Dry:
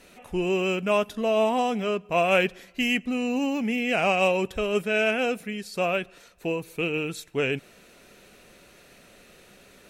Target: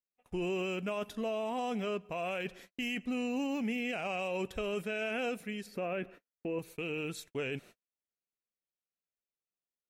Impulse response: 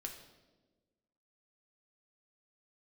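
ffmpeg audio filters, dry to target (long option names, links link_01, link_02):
-filter_complex "[0:a]agate=range=-47dB:threshold=-44dB:ratio=16:detection=peak,asettb=1/sr,asplit=3[link_01][link_02][link_03];[link_01]atrim=end=5.664[link_04];[link_02]atrim=start=5.66:end=6.59,asetpts=PTS-STARTPTS,afade=type=in:duration=0.004:curve=qsin,afade=type=out:start_time=0.926:duration=0.004:curve=qsin,equalizer=frequency=250:width_type=o:width=1:gain=10,equalizer=frequency=500:width_type=o:width=1:gain=4,equalizer=frequency=2000:width_type=o:width=1:gain=6,equalizer=frequency=4000:width_type=o:width=1:gain=-8,equalizer=frequency=8000:width_type=o:width=1:gain=-11[link_05];[link_03]atrim=start=6.586[link_06];[link_04][link_05]acrossfade=duration=0.004:curve1=hsin:curve2=qsin[link_07];[link_07][link_06]acrossfade=duration=0.004:curve1=qsin:curve2=hsin,alimiter=limit=-21dB:level=0:latency=1:release=15,volume=-6.5dB"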